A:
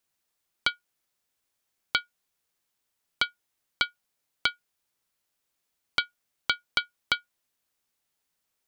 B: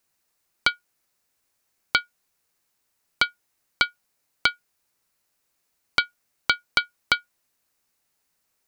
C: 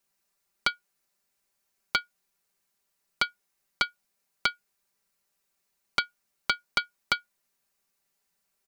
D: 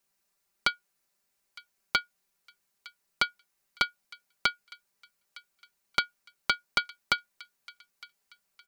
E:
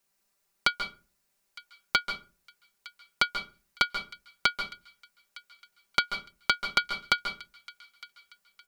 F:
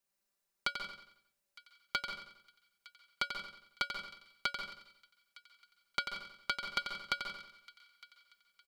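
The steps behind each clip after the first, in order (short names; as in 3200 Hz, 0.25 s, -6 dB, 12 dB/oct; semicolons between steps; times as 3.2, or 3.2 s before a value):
bell 3300 Hz -5.5 dB 0.31 oct; gain +6 dB
comb 5.1 ms, depth 72%; gain -5.5 dB
thin delay 0.91 s, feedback 34%, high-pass 1600 Hz, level -20 dB
reverb RT60 0.30 s, pre-delay 0.134 s, DRR 7.5 dB; gain +1.5 dB
resonator 570 Hz, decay 0.26 s, harmonics odd, mix 70%; on a send: feedback echo 90 ms, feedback 43%, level -8 dB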